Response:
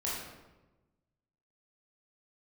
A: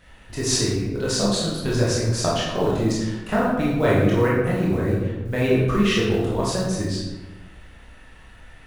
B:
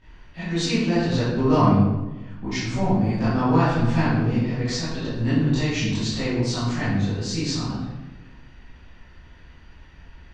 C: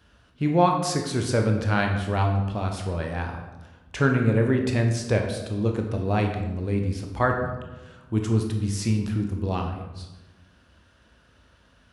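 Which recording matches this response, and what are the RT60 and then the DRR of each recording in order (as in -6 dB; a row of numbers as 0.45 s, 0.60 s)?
A; 1.1 s, 1.1 s, 1.1 s; -7.0 dB, -13.5 dB, 2.5 dB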